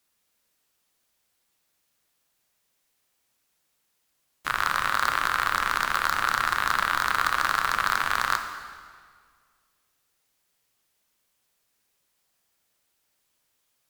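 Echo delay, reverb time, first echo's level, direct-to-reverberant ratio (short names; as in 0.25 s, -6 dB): none, 1.9 s, none, 6.0 dB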